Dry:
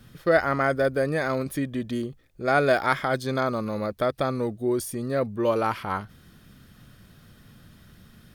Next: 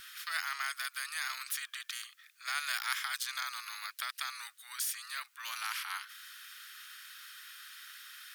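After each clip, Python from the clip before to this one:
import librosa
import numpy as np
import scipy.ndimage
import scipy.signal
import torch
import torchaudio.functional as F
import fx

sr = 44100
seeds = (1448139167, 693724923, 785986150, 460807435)

y = scipy.signal.sosfilt(scipy.signal.butter(8, 1300.0, 'highpass', fs=sr, output='sos'), x)
y = fx.spectral_comp(y, sr, ratio=2.0)
y = y * librosa.db_to_amplitude(-4.5)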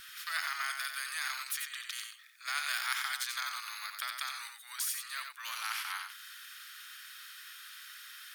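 y = x + 10.0 ** (-6.0 / 20.0) * np.pad(x, (int(90 * sr / 1000.0), 0))[:len(x)]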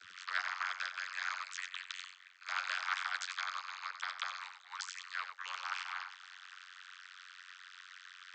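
y = fx.rev_double_slope(x, sr, seeds[0], early_s=0.27, late_s=4.0, knee_db=-20, drr_db=9.0)
y = fx.vocoder(y, sr, bands=32, carrier='saw', carrier_hz=91.3)
y = fx.hpss(y, sr, part='harmonic', gain_db=-15)
y = y * librosa.db_to_amplitude(5.0)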